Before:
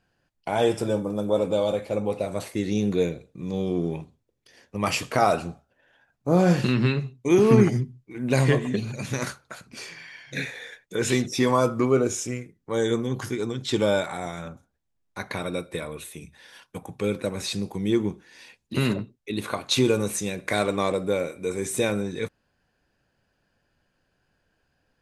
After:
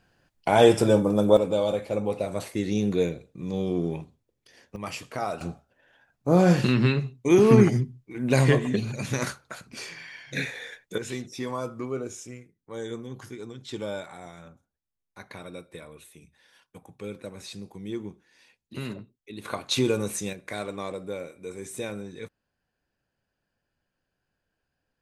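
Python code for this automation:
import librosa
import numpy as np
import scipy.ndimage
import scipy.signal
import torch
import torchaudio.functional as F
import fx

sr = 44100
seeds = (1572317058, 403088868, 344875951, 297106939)

y = fx.gain(x, sr, db=fx.steps((0.0, 5.5), (1.37, -1.0), (4.76, -10.0), (5.41, 0.5), (10.98, -11.0), (19.45, -3.0), (20.33, -9.5)))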